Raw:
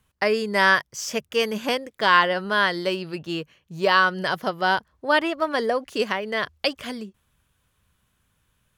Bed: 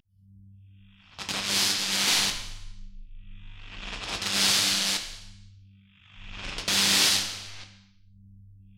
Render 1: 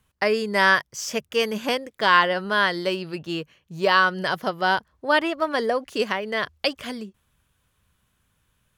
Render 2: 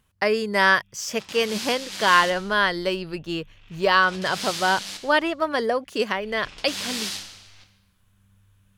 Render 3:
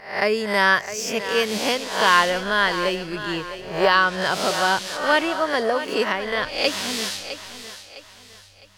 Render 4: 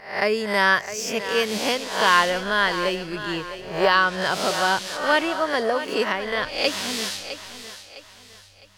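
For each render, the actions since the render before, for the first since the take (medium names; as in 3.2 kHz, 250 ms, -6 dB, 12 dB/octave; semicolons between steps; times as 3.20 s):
no audible change
add bed -8.5 dB
reverse spectral sustain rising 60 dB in 0.49 s; on a send: thinning echo 658 ms, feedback 38%, high-pass 260 Hz, level -11.5 dB
trim -1 dB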